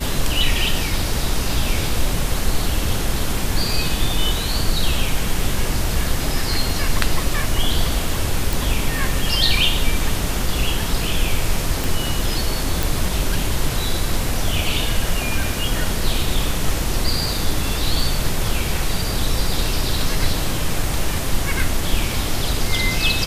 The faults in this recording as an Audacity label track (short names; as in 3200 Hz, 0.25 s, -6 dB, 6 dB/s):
8.530000	8.530000	pop
11.840000	11.840000	pop
12.830000	12.830000	pop